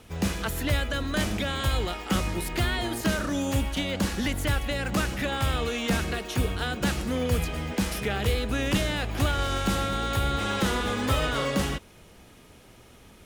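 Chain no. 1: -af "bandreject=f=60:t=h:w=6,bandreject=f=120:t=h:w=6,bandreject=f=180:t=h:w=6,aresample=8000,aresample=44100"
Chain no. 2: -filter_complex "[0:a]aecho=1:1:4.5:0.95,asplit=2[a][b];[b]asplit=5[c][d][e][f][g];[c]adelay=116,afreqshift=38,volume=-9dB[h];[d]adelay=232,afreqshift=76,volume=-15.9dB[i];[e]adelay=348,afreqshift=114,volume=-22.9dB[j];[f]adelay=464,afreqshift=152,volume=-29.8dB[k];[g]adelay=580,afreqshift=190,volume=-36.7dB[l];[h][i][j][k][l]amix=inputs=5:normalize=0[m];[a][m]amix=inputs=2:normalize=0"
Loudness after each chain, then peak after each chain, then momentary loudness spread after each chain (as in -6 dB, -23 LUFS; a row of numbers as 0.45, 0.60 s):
-28.5, -24.5 LUFS; -13.5, -7.5 dBFS; 3, 3 LU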